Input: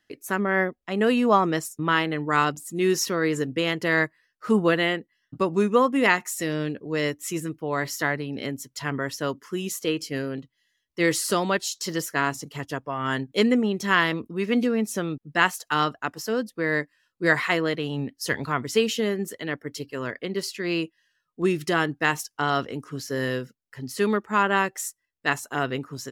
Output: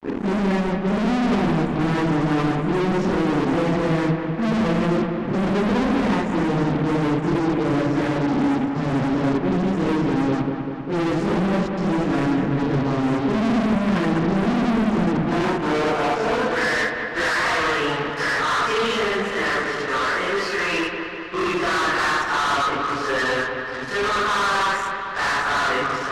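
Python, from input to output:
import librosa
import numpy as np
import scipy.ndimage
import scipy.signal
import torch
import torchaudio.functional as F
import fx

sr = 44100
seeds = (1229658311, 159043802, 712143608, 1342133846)

y = fx.phase_scramble(x, sr, seeds[0], window_ms=200)
y = fx.filter_sweep_bandpass(y, sr, from_hz=220.0, to_hz=1200.0, start_s=15.2, end_s=16.62, q=2.5)
y = fx.fuzz(y, sr, gain_db=49.0, gate_db=-56.0)
y = fx.air_absorb(y, sr, metres=74.0)
y = fx.echo_wet_lowpass(y, sr, ms=197, feedback_pct=67, hz=2800.0, wet_db=-6)
y = y * 10.0 ** (-7.0 / 20.0)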